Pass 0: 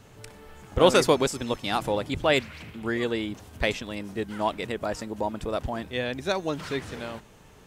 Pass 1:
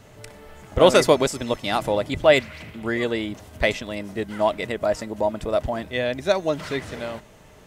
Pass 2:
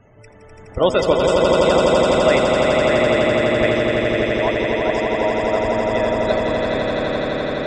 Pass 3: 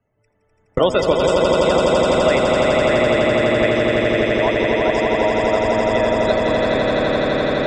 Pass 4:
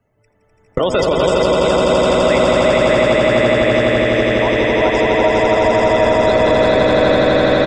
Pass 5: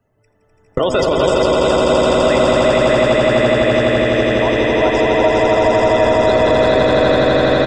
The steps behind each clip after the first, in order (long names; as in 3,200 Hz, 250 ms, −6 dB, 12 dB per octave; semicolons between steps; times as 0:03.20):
hollow resonant body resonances 620/2,000 Hz, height 9 dB; level +2.5 dB
spectral peaks only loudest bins 64; echo that builds up and dies away 84 ms, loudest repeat 8, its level −4 dB; level −2 dB
noise gate −29 dBFS, range −41 dB; multiband upward and downward compressor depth 70%
brickwall limiter −11.5 dBFS, peak gain reduction 9 dB; on a send: single-tap delay 404 ms −4 dB; on the sum: level +5.5 dB
notch filter 2,200 Hz, Q 9.4; on a send at −14 dB: convolution reverb, pre-delay 3 ms